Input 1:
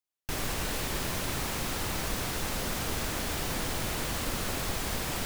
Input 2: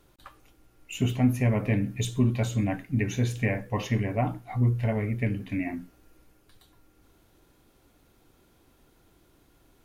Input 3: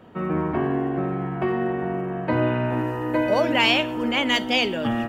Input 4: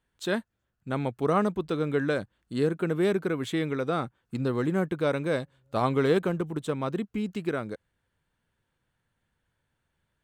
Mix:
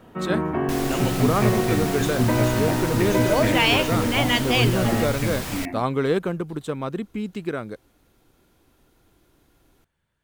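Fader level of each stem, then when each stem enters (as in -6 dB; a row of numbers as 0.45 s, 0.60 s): +1.5 dB, +0.5 dB, -0.5 dB, +1.5 dB; 0.40 s, 0.00 s, 0.00 s, 0.00 s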